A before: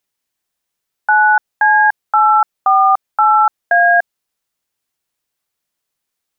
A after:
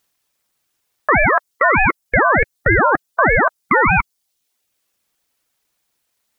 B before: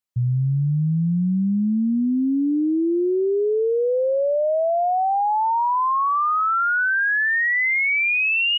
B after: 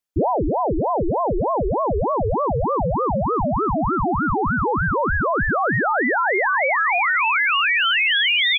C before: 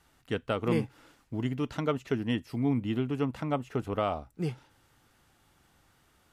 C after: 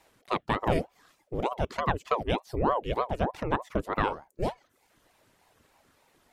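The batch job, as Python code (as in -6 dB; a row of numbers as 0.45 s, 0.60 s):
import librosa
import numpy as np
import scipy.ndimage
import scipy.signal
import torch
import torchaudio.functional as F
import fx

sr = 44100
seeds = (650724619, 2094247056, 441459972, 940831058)

p1 = fx.dereverb_blind(x, sr, rt60_s=0.72)
p2 = fx.over_compress(p1, sr, threshold_db=-19.0, ratio=-0.5)
p3 = p1 + F.gain(torch.from_numpy(p2), -1.5).numpy()
y = fx.ring_lfo(p3, sr, carrier_hz=520.0, swing_pct=70, hz=3.3)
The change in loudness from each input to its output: -2.5 LU, +0.5 LU, +1.5 LU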